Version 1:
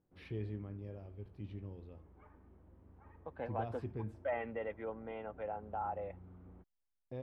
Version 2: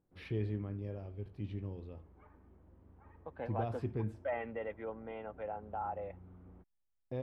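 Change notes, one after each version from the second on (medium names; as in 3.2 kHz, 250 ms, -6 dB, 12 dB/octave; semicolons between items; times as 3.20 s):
first voice +5.0 dB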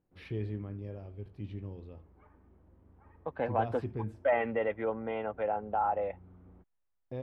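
second voice +9.5 dB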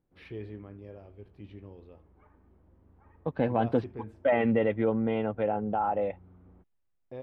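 first voice: add tone controls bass -8 dB, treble -5 dB; second voice: remove three-band isolator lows -14 dB, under 490 Hz, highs -12 dB, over 2.6 kHz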